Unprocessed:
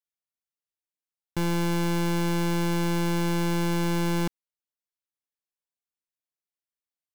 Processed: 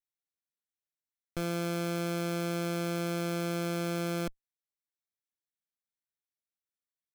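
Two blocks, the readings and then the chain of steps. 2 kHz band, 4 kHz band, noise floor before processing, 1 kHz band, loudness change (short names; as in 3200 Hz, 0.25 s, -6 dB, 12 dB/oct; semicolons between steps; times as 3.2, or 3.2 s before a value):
-6.0 dB, -6.0 dB, under -85 dBFS, -7.5 dB, -6.5 dB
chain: minimum comb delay 0.53 ms; gain -5.5 dB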